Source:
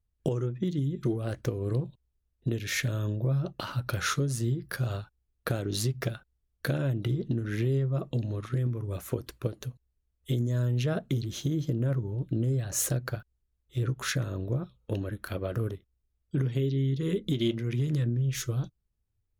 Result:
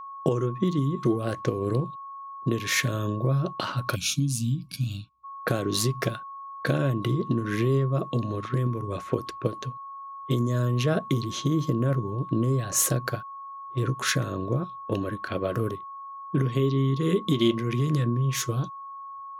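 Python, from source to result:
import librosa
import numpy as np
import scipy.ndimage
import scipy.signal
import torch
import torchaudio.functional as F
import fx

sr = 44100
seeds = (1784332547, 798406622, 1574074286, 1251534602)

y = scipy.signal.sosfilt(scipy.signal.butter(2, 140.0, 'highpass', fs=sr, output='sos'), x)
y = fx.env_lowpass(y, sr, base_hz=730.0, full_db=-30.5)
y = y + 10.0 ** (-43.0 / 20.0) * np.sin(2.0 * np.pi * 1100.0 * np.arange(len(y)) / sr)
y = fx.spec_box(y, sr, start_s=3.95, length_s=1.29, low_hz=310.0, high_hz=2200.0, gain_db=-30)
y = y * librosa.db_to_amplitude(6.0)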